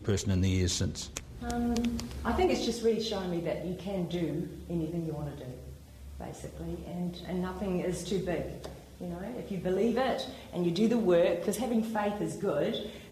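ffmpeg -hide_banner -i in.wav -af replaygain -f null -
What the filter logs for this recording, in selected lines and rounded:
track_gain = +11.6 dB
track_peak = 0.121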